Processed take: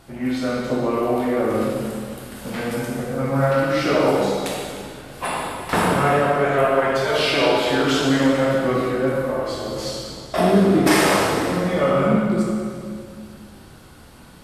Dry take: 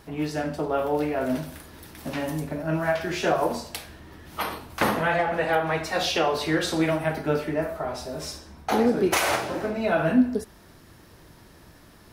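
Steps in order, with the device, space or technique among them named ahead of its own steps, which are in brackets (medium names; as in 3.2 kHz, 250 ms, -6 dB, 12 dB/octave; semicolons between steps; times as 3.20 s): slowed and reverbed (tape speed -16%; reverberation RT60 2.2 s, pre-delay 10 ms, DRR -3.5 dB); trim +1 dB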